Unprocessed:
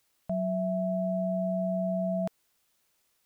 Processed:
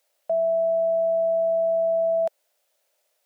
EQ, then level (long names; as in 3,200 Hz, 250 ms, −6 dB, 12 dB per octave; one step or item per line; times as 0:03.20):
high-pass with resonance 580 Hz, resonance Q 4.9
parametric band 1,100 Hz −5.5 dB 0.43 octaves
0.0 dB